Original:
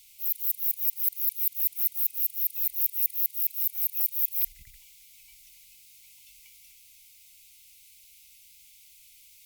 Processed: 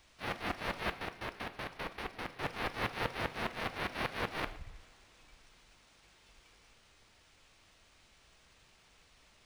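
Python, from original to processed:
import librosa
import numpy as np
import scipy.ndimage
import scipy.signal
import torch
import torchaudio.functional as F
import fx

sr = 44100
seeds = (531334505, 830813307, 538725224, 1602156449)

y = fx.tilt_shelf(x, sr, db=8.5, hz=970.0)
y = fx.level_steps(y, sr, step_db=19, at=(0.92, 2.43))
y = y + 10.0 ** (-22.5 / 20.0) * np.pad(y, (int(115 * sr / 1000.0), 0))[:len(y)]
y = fx.rev_double_slope(y, sr, seeds[0], early_s=0.58, late_s=4.1, knee_db=-21, drr_db=10.0)
y = np.interp(np.arange(len(y)), np.arange(len(y))[::3], y[::3])
y = y * librosa.db_to_amplitude(-1.5)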